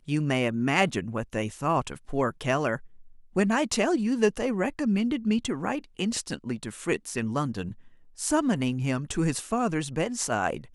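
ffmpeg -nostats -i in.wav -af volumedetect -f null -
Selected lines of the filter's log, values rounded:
mean_volume: -27.6 dB
max_volume: -7.3 dB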